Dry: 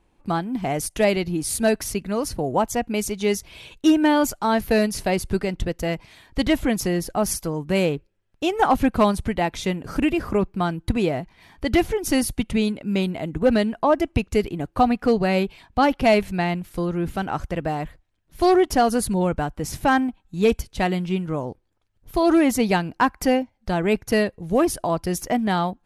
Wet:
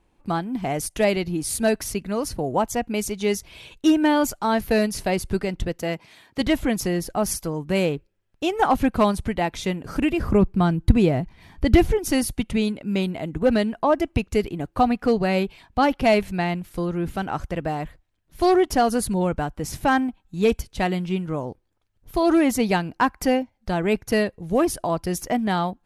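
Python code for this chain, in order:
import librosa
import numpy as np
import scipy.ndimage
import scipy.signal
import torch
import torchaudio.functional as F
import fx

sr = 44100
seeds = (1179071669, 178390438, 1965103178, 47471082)

y = fx.highpass(x, sr, hz=150.0, slope=12, at=(5.79, 6.41))
y = fx.low_shelf(y, sr, hz=250.0, db=11.0, at=(10.2, 11.99))
y = y * librosa.db_to_amplitude(-1.0)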